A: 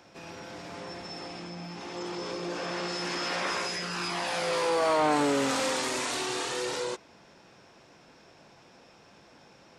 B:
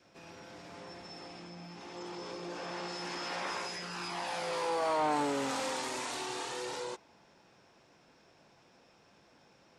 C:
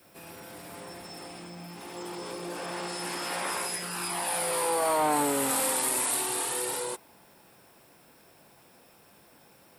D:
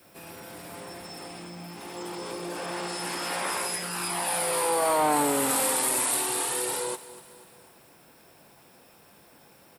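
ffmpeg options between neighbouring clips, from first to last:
-af "adynamicequalizer=threshold=0.00501:dfrequency=860:dqfactor=3.8:tfrequency=860:tqfactor=3.8:attack=5:release=100:ratio=0.375:range=3:mode=boostabove:tftype=bell,volume=-7.5dB"
-af "aexciter=amount=15.5:drive=6.2:freq=9.1k,volume=4.5dB"
-af "aecho=1:1:245|490|735|980:0.141|0.072|0.0367|0.0187,volume=2dB"

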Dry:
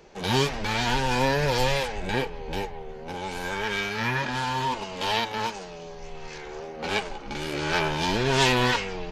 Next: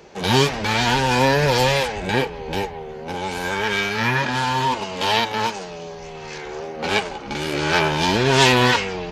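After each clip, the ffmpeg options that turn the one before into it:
-af "highpass=57,volume=6.5dB"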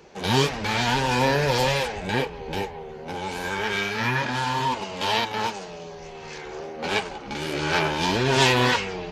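-af "flanger=delay=0.7:depth=9.2:regen=-63:speed=1.7:shape=sinusoidal"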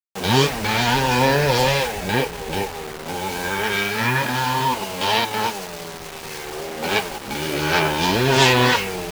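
-af "acrusher=bits=5:mix=0:aa=0.000001,volume=4dB"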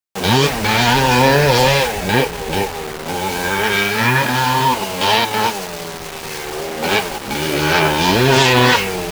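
-af "alimiter=level_in=6.5dB:limit=-1dB:release=50:level=0:latency=1,volume=-1dB"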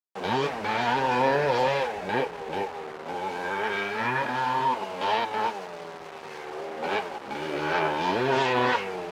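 -af "bandpass=f=750:t=q:w=0.59:csg=0,volume=-8.5dB"

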